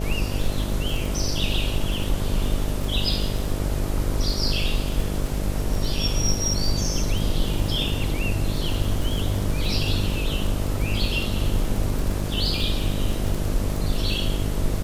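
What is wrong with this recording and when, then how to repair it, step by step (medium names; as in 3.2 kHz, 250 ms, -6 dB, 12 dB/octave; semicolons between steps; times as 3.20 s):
buzz 50 Hz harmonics 13 -28 dBFS
crackle 24 per s -25 dBFS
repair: de-click; de-hum 50 Hz, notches 13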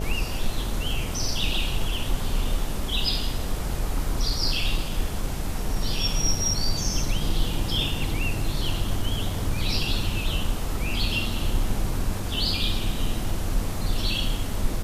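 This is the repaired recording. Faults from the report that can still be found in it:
nothing left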